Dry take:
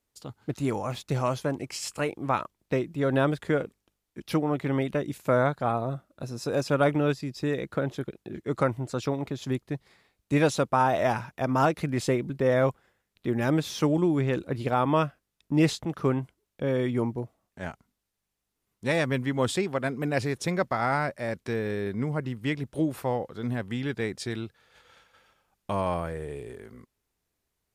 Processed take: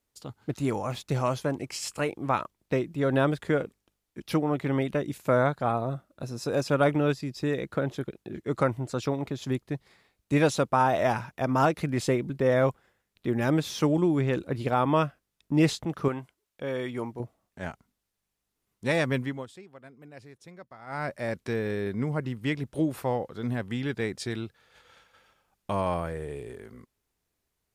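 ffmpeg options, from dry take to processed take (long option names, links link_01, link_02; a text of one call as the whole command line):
ffmpeg -i in.wav -filter_complex "[0:a]asettb=1/sr,asplit=3[link_01][link_02][link_03];[link_01]atrim=end=16.084[link_04];[link_02]atrim=start=16.08:end=17.2,asetpts=PTS-STARTPTS,afade=type=in:duration=0.004:curve=qsin,afade=type=out:start_time=1.116:duration=0.004:curve=qsin,lowshelf=frequency=400:gain=-10.5[link_05];[link_03]atrim=start=17.196[link_06];[link_04][link_05]acrossfade=duration=0.004:curve1=hsin:curve2=qsin[link_07];[link_07][link_06]acrossfade=duration=0.004:curve1=qsin:curve2=hsin,asplit=3[link_08][link_09][link_10];[link_08]atrim=end=19.46,asetpts=PTS-STARTPTS,afade=type=out:start_time=19.18:duration=0.28:silence=0.0944061[link_11];[link_09]atrim=start=19.46:end=20.86,asetpts=PTS-STARTPTS,volume=-20.5dB[link_12];[link_10]atrim=start=20.86,asetpts=PTS-STARTPTS,afade=type=in:duration=0.28:silence=0.0944061[link_13];[link_11][link_12][link_13]concat=n=3:v=0:a=1" out.wav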